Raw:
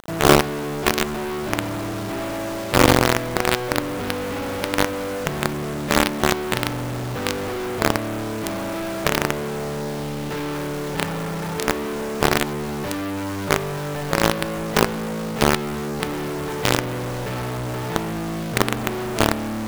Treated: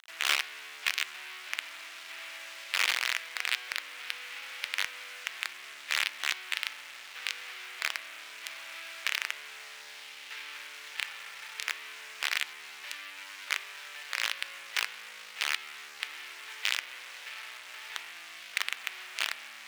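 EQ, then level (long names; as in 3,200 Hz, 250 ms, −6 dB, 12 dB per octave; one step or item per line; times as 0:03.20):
high-pass with resonance 2,300 Hz, resonance Q 1.6
high-shelf EQ 7,900 Hz −10 dB
−7.0 dB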